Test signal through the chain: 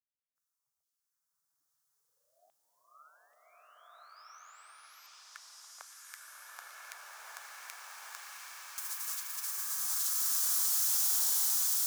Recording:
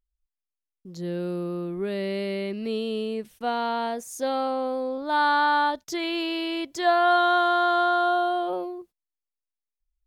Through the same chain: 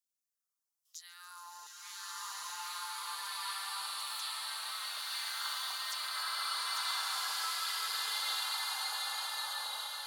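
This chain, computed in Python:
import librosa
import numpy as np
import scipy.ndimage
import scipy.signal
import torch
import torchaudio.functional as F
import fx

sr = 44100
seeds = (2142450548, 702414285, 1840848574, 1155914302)

y = fx.spec_gate(x, sr, threshold_db=-25, keep='weak')
y = fx.curve_eq(y, sr, hz=(150.0, 220.0, 440.0, 660.0, 1200.0, 2500.0, 5900.0), db=(0, -27, -8, -8, 0, -15, 6))
y = fx.echo_swell(y, sr, ms=142, loudest=5, wet_db=-14.5)
y = fx.filter_lfo_highpass(y, sr, shape='saw_down', hz=1.2, low_hz=630.0, high_hz=3400.0, q=2.7)
y = fx.rev_bloom(y, sr, seeds[0], attack_ms=1500, drr_db=-9.5)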